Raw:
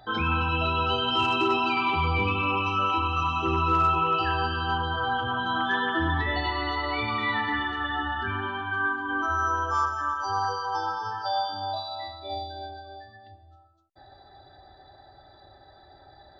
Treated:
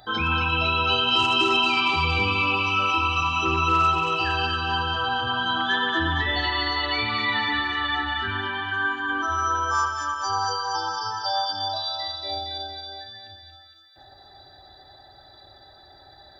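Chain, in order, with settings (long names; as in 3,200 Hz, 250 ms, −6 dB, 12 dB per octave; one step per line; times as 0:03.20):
high-shelf EQ 3,300 Hz +11.5 dB
delay with a high-pass on its return 231 ms, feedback 62%, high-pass 2,000 Hz, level −3 dB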